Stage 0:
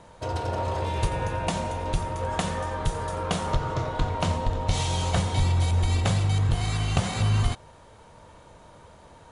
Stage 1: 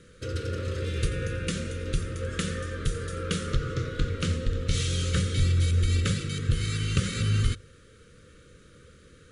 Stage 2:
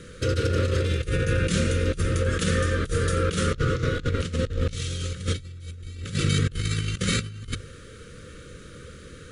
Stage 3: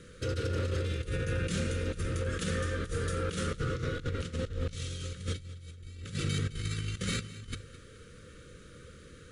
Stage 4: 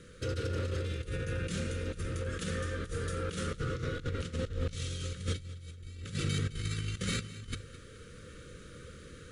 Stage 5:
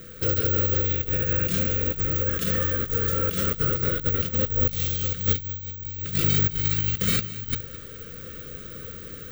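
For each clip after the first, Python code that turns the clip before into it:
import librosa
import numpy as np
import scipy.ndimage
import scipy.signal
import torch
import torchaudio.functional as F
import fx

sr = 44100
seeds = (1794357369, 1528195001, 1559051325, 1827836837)

y1 = scipy.signal.sosfilt(scipy.signal.cheby1(3, 1.0, [500.0, 1300.0], 'bandstop', fs=sr, output='sos'), x)
y1 = fx.hum_notches(y1, sr, base_hz=50, count=2)
y2 = fx.over_compress(y1, sr, threshold_db=-31.0, ratio=-0.5)
y2 = y2 * 10.0 ** (6.0 / 20.0)
y3 = 10.0 ** (-13.0 / 20.0) * np.tanh(y2 / 10.0 ** (-13.0 / 20.0))
y3 = fx.echo_feedback(y3, sr, ms=212, feedback_pct=41, wet_db=-17)
y3 = y3 * 10.0 ** (-8.0 / 20.0)
y4 = fx.rider(y3, sr, range_db=4, speed_s=2.0)
y4 = y4 * 10.0 ** (-2.0 / 20.0)
y5 = (np.kron(y4[::2], np.eye(2)[0]) * 2)[:len(y4)]
y5 = y5 * 10.0 ** (7.5 / 20.0)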